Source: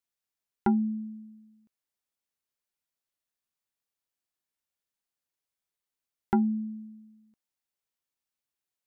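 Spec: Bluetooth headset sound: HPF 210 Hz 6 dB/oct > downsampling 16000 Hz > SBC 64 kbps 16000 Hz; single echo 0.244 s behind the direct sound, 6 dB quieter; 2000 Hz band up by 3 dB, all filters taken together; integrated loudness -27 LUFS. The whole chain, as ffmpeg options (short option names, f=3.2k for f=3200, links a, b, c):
-af "highpass=f=210:p=1,equalizer=f=2k:t=o:g=4.5,aecho=1:1:244:0.501,aresample=16000,aresample=44100,volume=4.5dB" -ar 16000 -c:a sbc -b:a 64k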